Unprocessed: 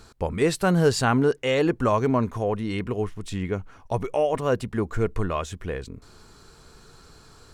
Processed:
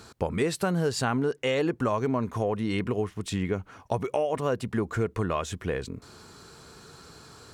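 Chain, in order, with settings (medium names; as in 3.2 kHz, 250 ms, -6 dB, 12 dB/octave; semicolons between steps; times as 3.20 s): high-pass 90 Hz 12 dB/octave; compression 4:1, threshold -27 dBFS, peak gain reduction 11 dB; trim +3 dB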